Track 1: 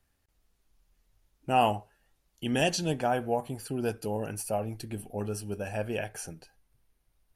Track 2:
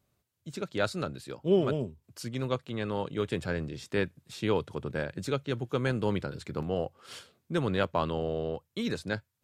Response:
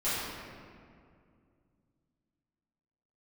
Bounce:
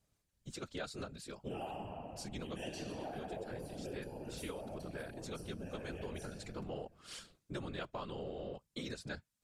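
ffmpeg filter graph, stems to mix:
-filter_complex "[0:a]equalizer=f=1.1k:w=1.5:g=-5,flanger=delay=0.9:depth=2.8:regen=-49:speed=0.55:shape=triangular,volume=-9dB,asplit=3[a][b][c];[b]volume=-4dB[d];[1:a]lowpass=8.8k,highshelf=f=4.8k:g=11,volume=-1dB[e];[c]apad=whole_len=416175[f];[e][f]sidechaincompress=threshold=-49dB:ratio=3:attack=16:release=635[g];[2:a]atrim=start_sample=2205[h];[d][h]afir=irnorm=-1:irlink=0[i];[a][g][i]amix=inputs=3:normalize=0,afftfilt=real='hypot(re,im)*cos(2*PI*random(0))':imag='hypot(re,im)*sin(2*PI*random(1))':win_size=512:overlap=0.75,acompressor=threshold=-40dB:ratio=4"

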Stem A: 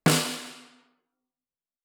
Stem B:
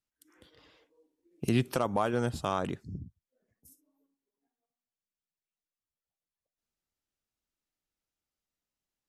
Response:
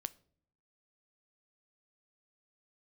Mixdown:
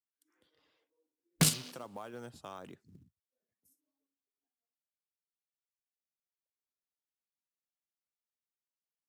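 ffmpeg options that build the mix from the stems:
-filter_complex "[0:a]afwtdn=0.0224,highshelf=f=9.4k:g=8.5,acrusher=bits=6:mode=log:mix=0:aa=0.000001,adelay=1350,volume=1.5dB[a];[1:a]highpass=f=220:p=1,acrusher=bits=7:mode=log:mix=0:aa=0.000001,volume=-13dB,asplit=2[b][c];[c]apad=whole_len=140946[d];[a][d]sidechaincompress=threshold=-48dB:ratio=12:attack=16:release=460[e];[e][b]amix=inputs=2:normalize=0,acrossover=split=150|3000[f][g][h];[g]acompressor=threshold=-41dB:ratio=2.5[i];[f][i][h]amix=inputs=3:normalize=0"

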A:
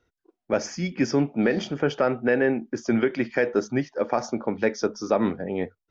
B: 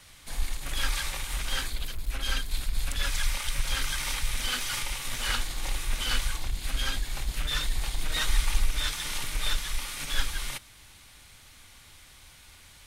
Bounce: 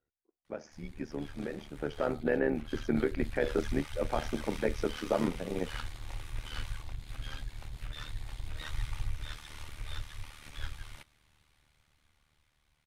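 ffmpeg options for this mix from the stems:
-filter_complex "[0:a]acontrast=49,volume=-9.5dB,afade=t=in:st=1.72:d=0.42:silence=0.354813[a];[1:a]dynaudnorm=f=480:g=9:m=11.5dB,adelay=450,volume=-16.5dB[b];[a][b]amix=inputs=2:normalize=0,highshelf=f=3.6k:g=-11,tremolo=f=75:d=0.788"

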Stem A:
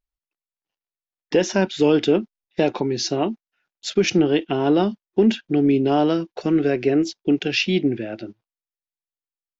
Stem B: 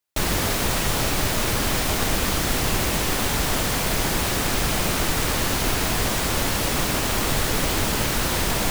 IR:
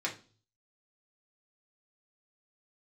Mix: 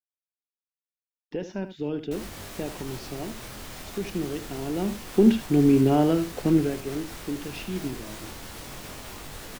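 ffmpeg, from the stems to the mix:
-filter_complex "[0:a]aemphasis=mode=reproduction:type=bsi,acrusher=bits=9:mix=0:aa=0.000001,volume=-5dB,afade=t=in:st=4.73:d=0.38:silence=0.266073,afade=t=out:st=6.53:d=0.23:silence=0.266073,asplit=2[a][b];[b]volume=-11.5dB[c];[1:a]alimiter=limit=-16.5dB:level=0:latency=1:release=175,flanger=delay=19.5:depth=5:speed=0.25,adelay=1950,volume=-10dB[d];[c]aecho=0:1:75:1[e];[a][d][e]amix=inputs=3:normalize=0"

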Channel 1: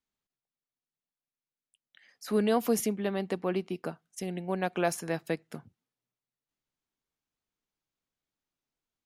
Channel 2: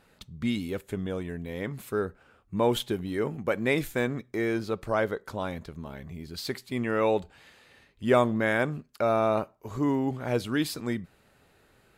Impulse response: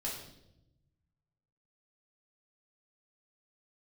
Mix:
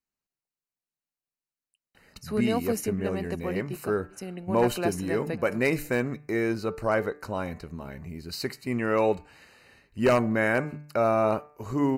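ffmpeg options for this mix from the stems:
-filter_complex "[0:a]volume=-2dB,asplit=2[a][b];[b]volume=-24dB[c];[1:a]bandreject=f=148.4:t=h:w=4,bandreject=f=296.8:t=h:w=4,bandreject=f=445.2:t=h:w=4,bandreject=f=593.6:t=h:w=4,bandreject=f=742:t=h:w=4,bandreject=f=890.4:t=h:w=4,bandreject=f=1.0388k:t=h:w=4,bandreject=f=1.1872k:t=h:w=4,bandreject=f=1.3356k:t=h:w=4,bandreject=f=1.484k:t=h:w=4,bandreject=f=1.6324k:t=h:w=4,bandreject=f=1.7808k:t=h:w=4,bandreject=f=1.9292k:t=h:w=4,bandreject=f=2.0776k:t=h:w=4,bandreject=f=2.226k:t=h:w=4,bandreject=f=2.3744k:t=h:w=4,bandreject=f=2.5228k:t=h:w=4,bandreject=f=2.6712k:t=h:w=4,aeval=exprs='0.178*(abs(mod(val(0)/0.178+3,4)-2)-1)':c=same,adelay=1950,volume=1.5dB[d];[c]aecho=0:1:548:1[e];[a][d][e]amix=inputs=3:normalize=0,asuperstop=centerf=3400:order=12:qfactor=5"

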